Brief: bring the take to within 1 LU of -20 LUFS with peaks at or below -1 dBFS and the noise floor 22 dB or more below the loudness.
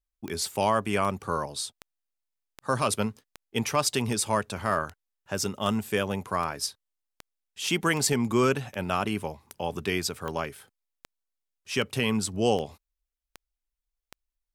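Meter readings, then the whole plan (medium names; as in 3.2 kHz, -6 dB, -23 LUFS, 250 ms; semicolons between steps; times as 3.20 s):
clicks found 19; loudness -28.5 LUFS; peak level -12.0 dBFS; loudness target -20.0 LUFS
-> de-click; trim +8.5 dB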